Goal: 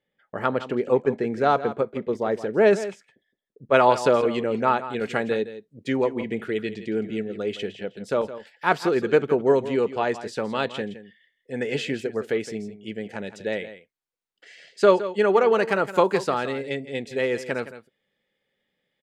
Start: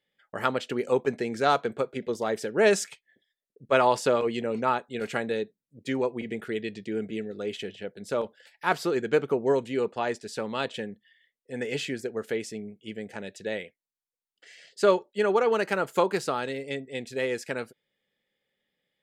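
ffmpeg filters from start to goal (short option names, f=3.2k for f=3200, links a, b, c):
-af "asetnsamples=n=441:p=0,asendcmd='3.74 lowpass f 3800',lowpass=f=1.2k:p=1,aecho=1:1:165:0.211,volume=4.5dB"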